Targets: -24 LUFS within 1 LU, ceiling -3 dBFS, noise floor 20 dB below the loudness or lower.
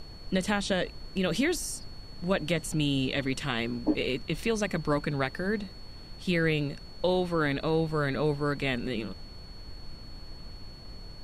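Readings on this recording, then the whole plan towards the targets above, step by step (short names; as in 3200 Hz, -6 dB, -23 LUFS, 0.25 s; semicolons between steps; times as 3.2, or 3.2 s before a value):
steady tone 4400 Hz; tone level -50 dBFS; noise floor -46 dBFS; noise floor target -50 dBFS; loudness -29.5 LUFS; peak -13.5 dBFS; loudness target -24.0 LUFS
-> notch 4400 Hz, Q 30; noise print and reduce 6 dB; gain +5.5 dB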